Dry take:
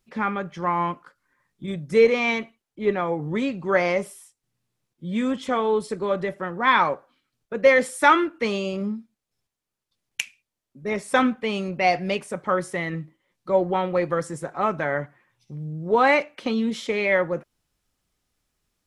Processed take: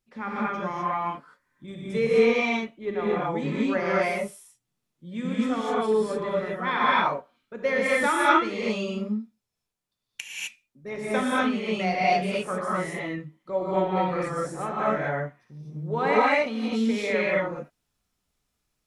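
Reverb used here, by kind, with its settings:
reverb whose tail is shaped and stops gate 280 ms rising, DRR −7 dB
level −9.5 dB

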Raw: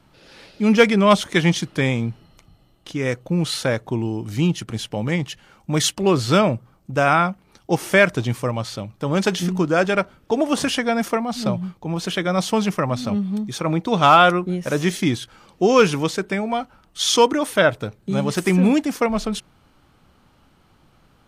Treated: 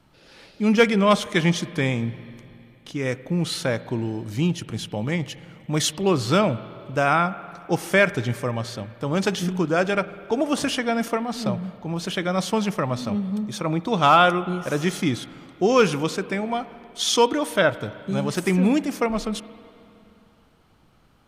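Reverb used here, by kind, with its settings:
spring reverb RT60 2.8 s, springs 47/52 ms, chirp 65 ms, DRR 15.5 dB
level −3 dB

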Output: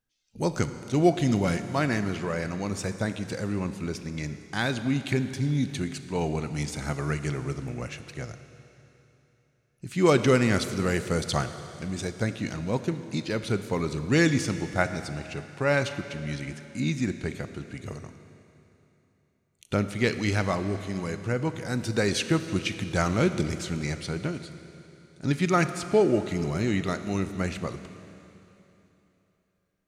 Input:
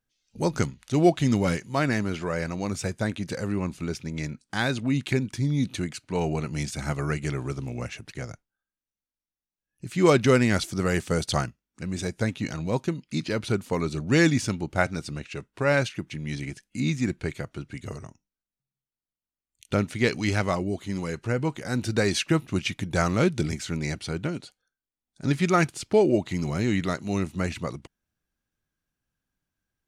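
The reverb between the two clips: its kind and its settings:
four-comb reverb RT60 3.2 s, combs from 27 ms, DRR 10 dB
level −1.5 dB

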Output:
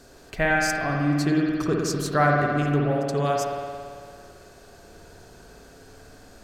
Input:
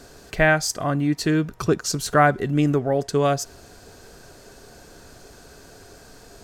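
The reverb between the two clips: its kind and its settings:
spring reverb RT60 2.1 s, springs 55 ms, chirp 35 ms, DRR −1 dB
level −5.5 dB

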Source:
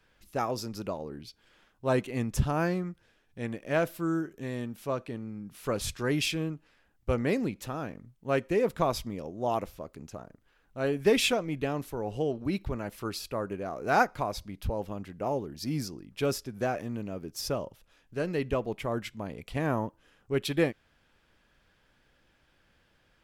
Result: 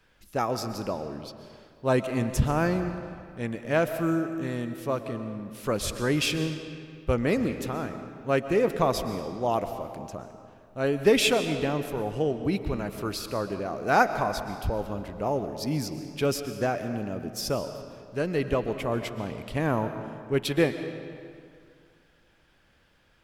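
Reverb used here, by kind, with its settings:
comb and all-pass reverb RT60 2.2 s, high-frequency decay 0.75×, pre-delay 90 ms, DRR 9 dB
level +3 dB

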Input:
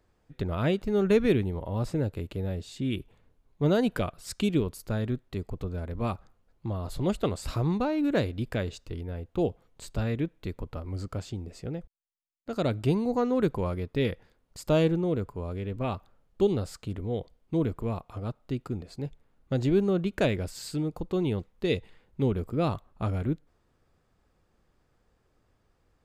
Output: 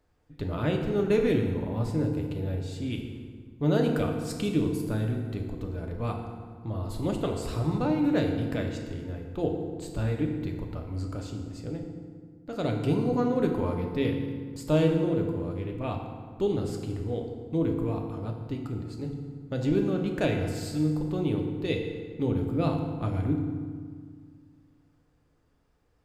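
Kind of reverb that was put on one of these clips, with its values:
feedback delay network reverb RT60 1.8 s, low-frequency decay 1.35×, high-frequency decay 0.65×, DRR 1.5 dB
level −3 dB

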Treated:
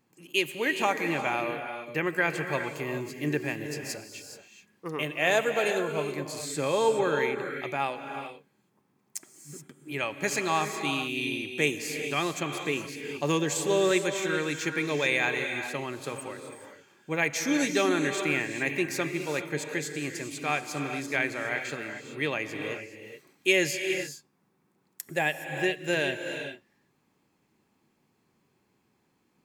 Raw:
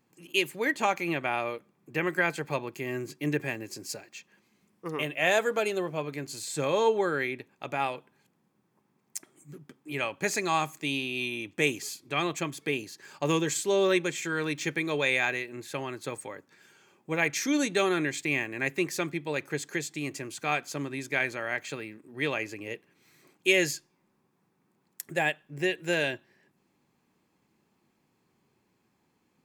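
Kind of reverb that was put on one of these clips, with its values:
reverb whose tail is shaped and stops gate 450 ms rising, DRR 6 dB

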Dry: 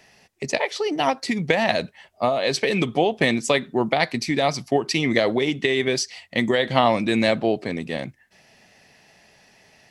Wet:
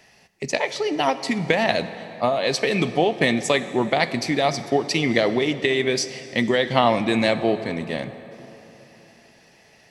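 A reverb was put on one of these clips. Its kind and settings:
dense smooth reverb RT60 3.8 s, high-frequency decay 0.6×, DRR 11.5 dB

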